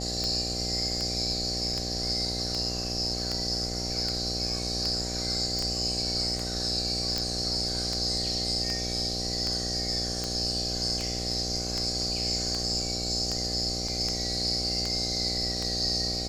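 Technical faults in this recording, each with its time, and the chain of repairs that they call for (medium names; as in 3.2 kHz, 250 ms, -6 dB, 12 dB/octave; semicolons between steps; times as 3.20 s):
buzz 60 Hz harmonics 13 -35 dBFS
tick 78 rpm -17 dBFS
5.59 s: pop
7.18 s: pop -14 dBFS
13.88 s: dropout 3.7 ms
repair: de-click; de-hum 60 Hz, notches 13; interpolate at 13.88 s, 3.7 ms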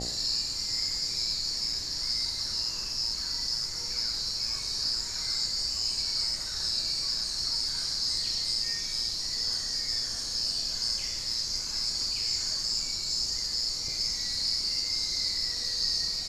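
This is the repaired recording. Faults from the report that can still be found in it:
5.59 s: pop
7.18 s: pop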